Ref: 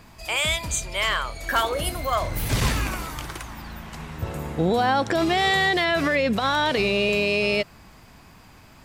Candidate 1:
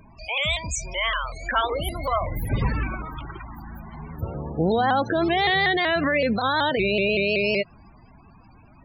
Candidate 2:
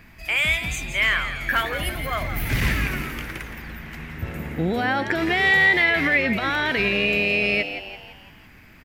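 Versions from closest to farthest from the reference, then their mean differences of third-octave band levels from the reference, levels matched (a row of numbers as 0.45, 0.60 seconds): 2, 1; 4.5, 11.0 decibels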